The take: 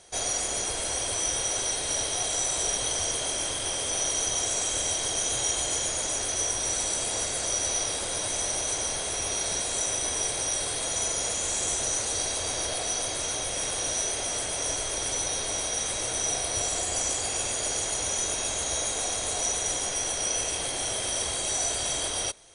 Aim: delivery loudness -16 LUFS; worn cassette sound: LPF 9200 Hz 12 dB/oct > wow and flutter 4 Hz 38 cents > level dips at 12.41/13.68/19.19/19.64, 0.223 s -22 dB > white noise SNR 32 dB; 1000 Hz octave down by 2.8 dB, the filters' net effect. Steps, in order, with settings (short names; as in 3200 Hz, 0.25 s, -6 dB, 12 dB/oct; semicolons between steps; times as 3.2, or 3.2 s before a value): LPF 9200 Hz 12 dB/oct; bell 1000 Hz -4 dB; wow and flutter 4 Hz 38 cents; level dips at 12.41/13.68/19.19/19.64, 0.223 s -22 dB; white noise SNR 32 dB; gain +11.5 dB